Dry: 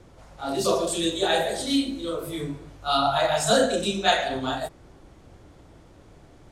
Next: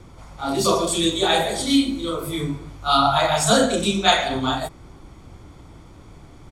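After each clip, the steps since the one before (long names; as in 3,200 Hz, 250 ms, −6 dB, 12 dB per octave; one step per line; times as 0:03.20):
comb filter 0.9 ms, depth 39%
level +5 dB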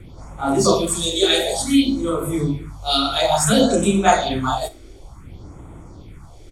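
all-pass phaser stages 4, 0.57 Hz, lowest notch 150–4,800 Hz
four-comb reverb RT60 0.32 s, combs from 33 ms, DRR 16 dB
level +4 dB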